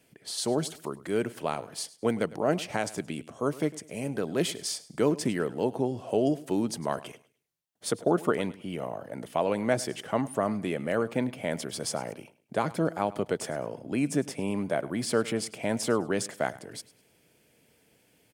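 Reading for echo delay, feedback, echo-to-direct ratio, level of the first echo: 103 ms, 30%, −18.5 dB, −19.0 dB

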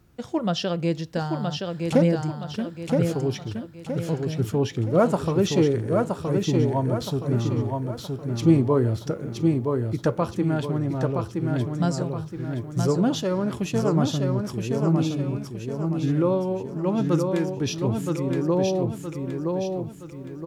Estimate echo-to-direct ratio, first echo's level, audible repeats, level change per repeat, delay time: −3.0 dB, −4.0 dB, 5, −7.5 dB, 970 ms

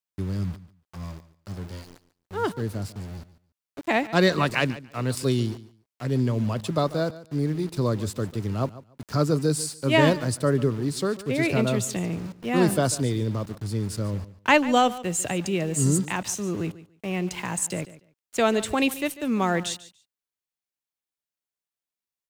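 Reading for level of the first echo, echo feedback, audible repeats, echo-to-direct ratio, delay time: −17.0 dB, 18%, 2, −17.0 dB, 144 ms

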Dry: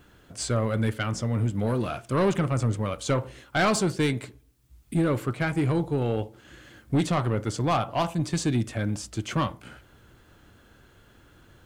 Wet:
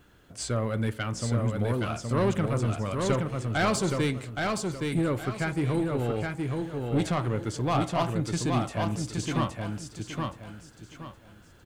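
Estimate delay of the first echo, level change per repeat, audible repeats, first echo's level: 820 ms, −10.5 dB, 4, −3.5 dB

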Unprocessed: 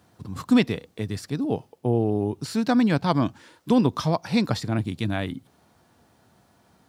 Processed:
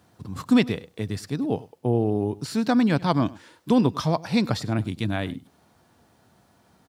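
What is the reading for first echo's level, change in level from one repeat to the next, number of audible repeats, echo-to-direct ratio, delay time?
−21.0 dB, repeats not evenly spaced, 1, −21.0 dB, 100 ms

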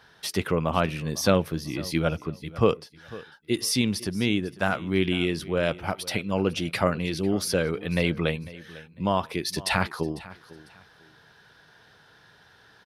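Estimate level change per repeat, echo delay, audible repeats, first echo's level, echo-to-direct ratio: −11.5 dB, 499 ms, 2, −19.0 dB, −18.5 dB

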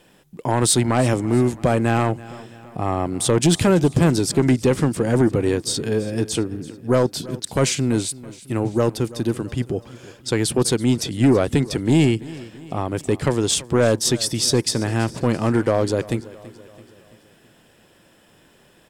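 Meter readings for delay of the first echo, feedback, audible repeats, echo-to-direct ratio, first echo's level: 332 ms, 53%, 3, −17.5 dB, −19.0 dB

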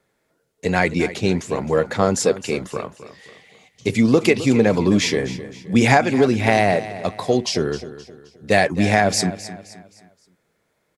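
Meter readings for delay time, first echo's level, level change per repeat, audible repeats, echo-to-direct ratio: 262 ms, −14.5 dB, −8.0 dB, 3, −14.0 dB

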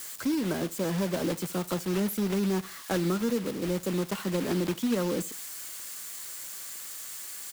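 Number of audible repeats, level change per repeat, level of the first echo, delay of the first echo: 2, −9.5 dB, −22.0 dB, 74 ms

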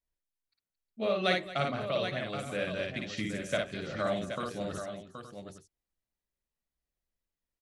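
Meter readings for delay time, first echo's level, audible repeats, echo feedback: 55 ms, −3.0 dB, 5, repeats not evenly spaced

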